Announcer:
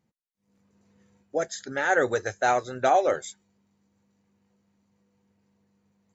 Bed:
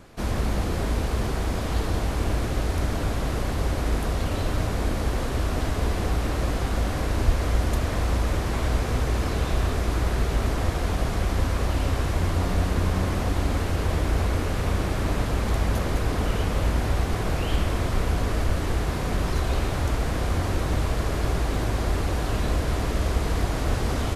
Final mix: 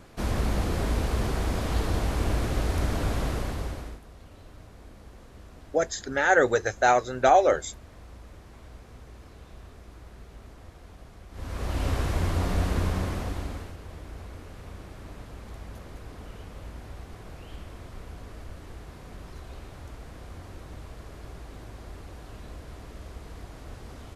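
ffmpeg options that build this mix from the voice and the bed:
-filter_complex "[0:a]adelay=4400,volume=2.5dB[a];[1:a]volume=19dB,afade=t=out:st=3.21:d=0.79:silence=0.0841395,afade=t=in:st=11.31:d=0.58:silence=0.0944061,afade=t=out:st=12.77:d=1:silence=0.16788[b];[a][b]amix=inputs=2:normalize=0"

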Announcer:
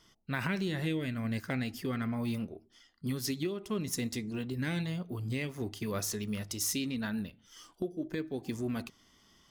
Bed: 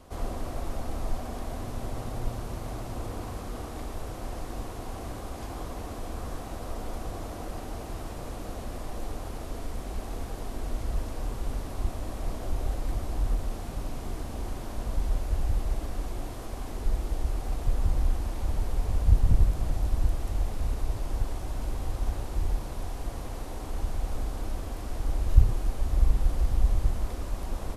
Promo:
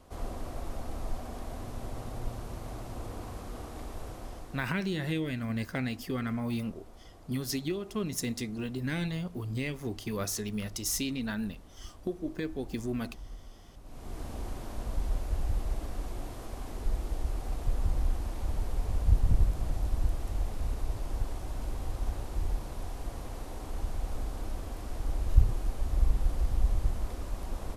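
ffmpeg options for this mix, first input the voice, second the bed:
-filter_complex "[0:a]adelay=4250,volume=1dB[a];[1:a]volume=9.5dB,afade=t=out:st=4.08:d=0.74:silence=0.223872,afade=t=in:st=13.83:d=0.42:silence=0.199526[b];[a][b]amix=inputs=2:normalize=0"

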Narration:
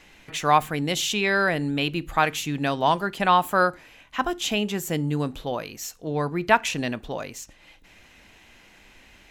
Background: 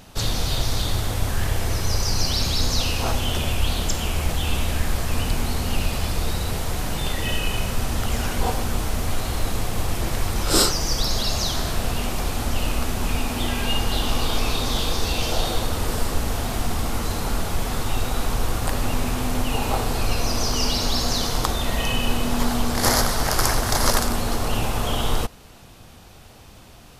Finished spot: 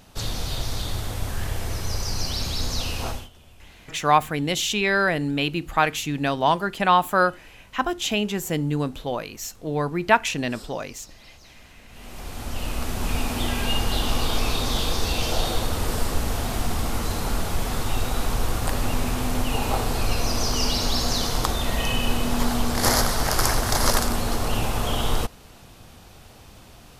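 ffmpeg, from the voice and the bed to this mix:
-filter_complex "[0:a]adelay=3600,volume=1dB[a];[1:a]volume=21.5dB,afade=t=out:st=3.05:d=0.24:silence=0.0749894,afade=t=in:st=11.88:d=1.34:silence=0.0473151[b];[a][b]amix=inputs=2:normalize=0"

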